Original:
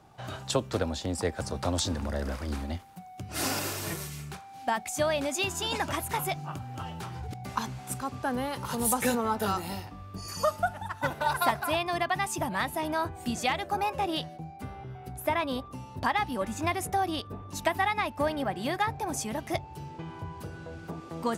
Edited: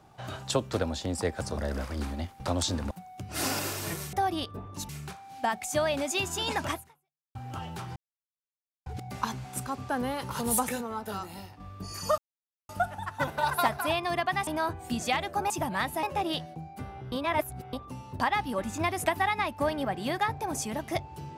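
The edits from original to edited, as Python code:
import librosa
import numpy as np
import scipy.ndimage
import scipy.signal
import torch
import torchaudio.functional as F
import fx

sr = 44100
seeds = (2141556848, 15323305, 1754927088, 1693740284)

y = fx.edit(x, sr, fx.move(start_s=1.57, length_s=0.51, to_s=2.91),
    fx.fade_out_span(start_s=5.97, length_s=0.62, curve='exp'),
    fx.insert_silence(at_s=7.2, length_s=0.9),
    fx.clip_gain(start_s=9.03, length_s=0.91, db=-7.0),
    fx.insert_silence(at_s=10.52, length_s=0.51),
    fx.move(start_s=12.3, length_s=0.53, to_s=13.86),
    fx.reverse_span(start_s=14.95, length_s=0.61),
    fx.move(start_s=16.89, length_s=0.76, to_s=4.13), tone=tone)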